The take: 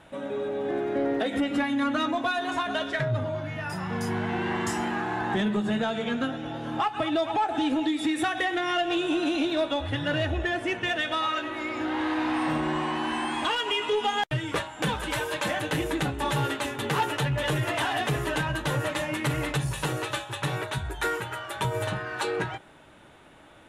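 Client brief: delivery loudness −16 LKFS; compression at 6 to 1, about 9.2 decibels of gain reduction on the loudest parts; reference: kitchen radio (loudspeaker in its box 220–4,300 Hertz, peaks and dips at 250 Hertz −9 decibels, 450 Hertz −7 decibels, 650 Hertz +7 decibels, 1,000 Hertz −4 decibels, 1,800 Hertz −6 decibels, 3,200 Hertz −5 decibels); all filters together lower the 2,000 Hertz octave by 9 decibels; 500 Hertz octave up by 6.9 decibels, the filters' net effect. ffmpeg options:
ffmpeg -i in.wav -af "equalizer=frequency=500:width_type=o:gain=8.5,equalizer=frequency=2000:width_type=o:gain=-8.5,acompressor=threshold=-27dB:ratio=6,highpass=220,equalizer=frequency=250:width_type=q:width=4:gain=-9,equalizer=frequency=450:width_type=q:width=4:gain=-7,equalizer=frequency=650:width_type=q:width=4:gain=7,equalizer=frequency=1000:width_type=q:width=4:gain=-4,equalizer=frequency=1800:width_type=q:width=4:gain=-6,equalizer=frequency=3200:width_type=q:width=4:gain=-5,lowpass=frequency=4300:width=0.5412,lowpass=frequency=4300:width=1.3066,volume=16dB" out.wav

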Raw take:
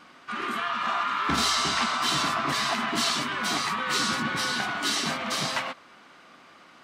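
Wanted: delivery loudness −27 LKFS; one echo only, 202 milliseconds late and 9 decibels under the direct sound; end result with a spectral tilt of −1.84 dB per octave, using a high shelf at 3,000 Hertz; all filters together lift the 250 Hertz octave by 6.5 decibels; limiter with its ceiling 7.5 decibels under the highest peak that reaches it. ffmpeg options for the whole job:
ffmpeg -i in.wav -af "equalizer=frequency=250:width_type=o:gain=7.5,highshelf=frequency=3000:gain=6,alimiter=limit=-16.5dB:level=0:latency=1,aecho=1:1:202:0.355,volume=-2dB" out.wav

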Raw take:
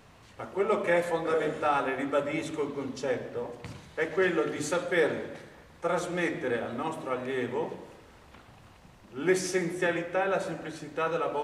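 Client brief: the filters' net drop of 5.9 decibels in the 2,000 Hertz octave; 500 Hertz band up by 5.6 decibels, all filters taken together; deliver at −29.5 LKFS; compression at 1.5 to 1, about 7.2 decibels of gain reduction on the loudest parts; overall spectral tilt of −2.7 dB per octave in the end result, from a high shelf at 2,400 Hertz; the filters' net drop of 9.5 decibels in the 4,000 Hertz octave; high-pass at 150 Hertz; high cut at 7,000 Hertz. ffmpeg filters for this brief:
ffmpeg -i in.wav -af "highpass=150,lowpass=7000,equalizer=frequency=500:width_type=o:gain=7,equalizer=frequency=2000:width_type=o:gain=-4.5,highshelf=frequency=2400:gain=-4.5,equalizer=frequency=4000:width_type=o:gain=-6.5,acompressor=threshold=-37dB:ratio=1.5,volume=3dB" out.wav

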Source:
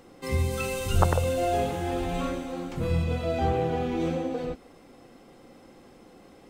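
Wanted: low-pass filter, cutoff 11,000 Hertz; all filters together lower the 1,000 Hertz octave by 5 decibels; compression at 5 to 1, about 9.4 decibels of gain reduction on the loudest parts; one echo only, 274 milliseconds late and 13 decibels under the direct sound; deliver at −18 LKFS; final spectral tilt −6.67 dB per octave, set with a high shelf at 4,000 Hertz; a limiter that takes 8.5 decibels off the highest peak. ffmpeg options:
ffmpeg -i in.wav -af "lowpass=11000,equalizer=frequency=1000:width_type=o:gain=-7.5,highshelf=frequency=4000:gain=-8.5,acompressor=threshold=-28dB:ratio=5,alimiter=level_in=2.5dB:limit=-24dB:level=0:latency=1,volume=-2.5dB,aecho=1:1:274:0.224,volume=17.5dB" out.wav

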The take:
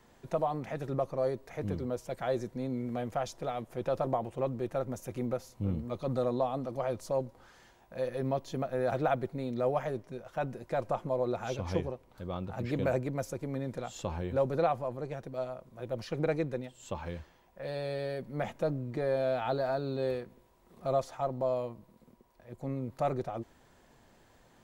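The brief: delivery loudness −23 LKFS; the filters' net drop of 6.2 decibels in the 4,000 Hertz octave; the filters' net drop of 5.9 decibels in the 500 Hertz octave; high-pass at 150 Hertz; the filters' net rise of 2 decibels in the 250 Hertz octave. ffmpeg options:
ffmpeg -i in.wav -af "highpass=150,equalizer=frequency=250:width_type=o:gain=5.5,equalizer=frequency=500:width_type=o:gain=-8.5,equalizer=frequency=4000:width_type=o:gain=-7.5,volume=14.5dB" out.wav

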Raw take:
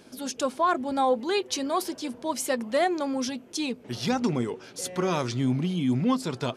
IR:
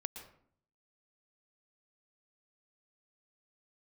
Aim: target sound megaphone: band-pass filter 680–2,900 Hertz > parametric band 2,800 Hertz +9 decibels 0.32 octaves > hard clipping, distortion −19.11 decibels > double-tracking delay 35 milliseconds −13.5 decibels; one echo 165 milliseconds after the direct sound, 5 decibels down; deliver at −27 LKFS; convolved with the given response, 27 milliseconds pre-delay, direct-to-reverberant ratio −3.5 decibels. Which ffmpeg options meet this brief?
-filter_complex "[0:a]aecho=1:1:165:0.562,asplit=2[link_01][link_02];[1:a]atrim=start_sample=2205,adelay=27[link_03];[link_02][link_03]afir=irnorm=-1:irlink=0,volume=5dB[link_04];[link_01][link_04]amix=inputs=2:normalize=0,highpass=680,lowpass=2900,equalizer=frequency=2800:width_type=o:width=0.32:gain=9,asoftclip=type=hard:threshold=-16dB,asplit=2[link_05][link_06];[link_06]adelay=35,volume=-13.5dB[link_07];[link_05][link_07]amix=inputs=2:normalize=0,volume=-0.5dB"

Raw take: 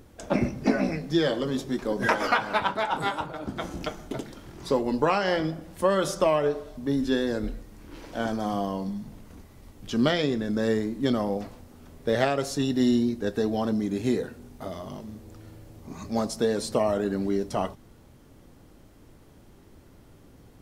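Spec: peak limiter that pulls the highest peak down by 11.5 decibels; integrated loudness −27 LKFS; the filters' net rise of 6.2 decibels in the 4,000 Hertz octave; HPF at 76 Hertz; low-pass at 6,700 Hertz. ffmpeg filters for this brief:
ffmpeg -i in.wav -af "highpass=76,lowpass=6700,equalizer=frequency=4000:width_type=o:gain=8.5,volume=1.5dB,alimiter=limit=-14dB:level=0:latency=1" out.wav

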